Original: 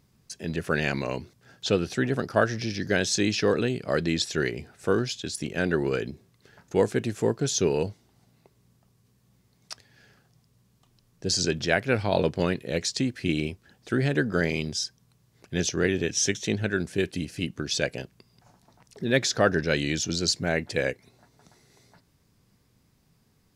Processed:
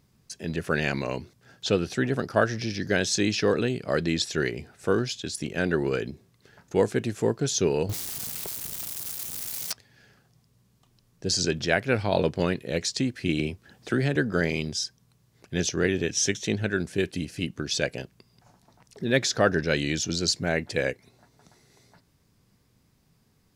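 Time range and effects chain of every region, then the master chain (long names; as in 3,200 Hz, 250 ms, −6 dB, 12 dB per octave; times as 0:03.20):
0:07.89–0:09.72: spike at every zero crossing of −31 dBFS + leveller curve on the samples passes 5
0:13.39–0:14.16: high-pass filter 52 Hz + multiband upward and downward compressor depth 40%
whole clip: no processing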